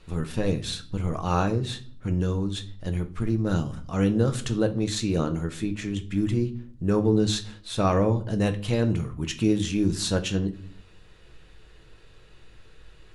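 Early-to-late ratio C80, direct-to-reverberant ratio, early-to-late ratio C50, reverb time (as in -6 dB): 20.0 dB, 6.0 dB, 15.5 dB, 0.45 s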